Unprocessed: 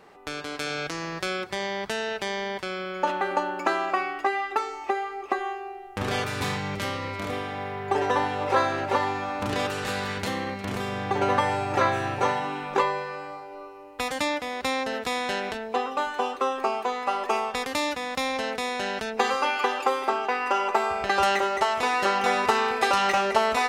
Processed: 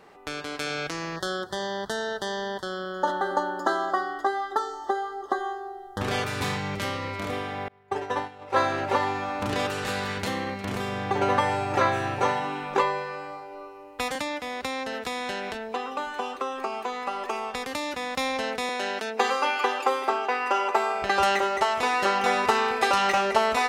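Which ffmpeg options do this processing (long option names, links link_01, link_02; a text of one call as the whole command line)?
ffmpeg -i in.wav -filter_complex "[0:a]asettb=1/sr,asplit=3[link_01][link_02][link_03];[link_01]atrim=end=1.164[link_04];[link_02]atrim=start=1.16:end=6.01,asetpts=PTS-STARTPTS,afade=type=in:duration=0.004:curve=qsin,afade=type=out:start_time=4.846:duration=0.004:curve=qsin,asuperstop=centerf=2400:order=12:qfactor=2.1[link_05];[link_03]atrim=start=6.006[link_06];[link_04][link_05]acrossfade=duration=0.004:curve1=hsin:curve2=qsin[link_07];[link_07][link_06]acrossfade=duration=0.004:curve1=qsin:curve2=hsin,asettb=1/sr,asplit=3[link_08][link_09][link_10];[link_08]atrim=end=7.684[link_11];[link_09]atrim=start=7.68:end=8.56,asetpts=PTS-STARTPTS,afade=type=in:duration=0.004:curve=qsin,afade=type=out:start_time=0.876:duration=0.004:curve=qsin,agate=range=-33dB:threshold=-19dB:ratio=3:release=100:detection=peak[link_12];[link_10]atrim=start=8.556[link_13];[link_11][link_12]acrossfade=duration=0.004:curve1=hsin:curve2=qsin[link_14];[link_14][link_13]acrossfade=duration=0.004:curve1=qsin:curve2=hsin,asettb=1/sr,asplit=3[link_15][link_16][link_17];[link_15]atrim=end=14.154[link_18];[link_16]atrim=start=14.15:end=17.94,asetpts=PTS-STARTPTS,afade=type=in:duration=0.004:curve=qsin,afade=type=out:start_time=3.786:duration=0.004:curve=qsin,acrossover=split=380|950[link_19][link_20][link_21];[link_19]acompressor=threshold=-38dB:ratio=4[link_22];[link_20]acompressor=threshold=-35dB:ratio=4[link_23];[link_21]acompressor=threshold=-32dB:ratio=4[link_24];[link_22][link_23][link_24]amix=inputs=3:normalize=0[link_25];[link_17]atrim=start=17.936[link_26];[link_18][link_25]acrossfade=duration=0.004:curve1=hsin:curve2=qsin[link_27];[link_27][link_26]acrossfade=duration=0.004:curve1=qsin:curve2=hsin,asettb=1/sr,asplit=3[link_28][link_29][link_30];[link_28]atrim=end=18.694[link_31];[link_29]atrim=start=18.69:end=21.02,asetpts=PTS-STARTPTS,afade=type=in:duration=0.004:curve=qsin,afade=type=out:start_time=2.326:duration=0.004:curve=qsin,highpass=frequency=230:width=0.5412,highpass=frequency=230:width=1.3066[link_32];[link_30]atrim=start=21.016[link_33];[link_31][link_32]acrossfade=duration=0.004:curve1=hsin:curve2=qsin[link_34];[link_34][link_33]acrossfade=duration=0.004:curve1=qsin:curve2=hsin" out.wav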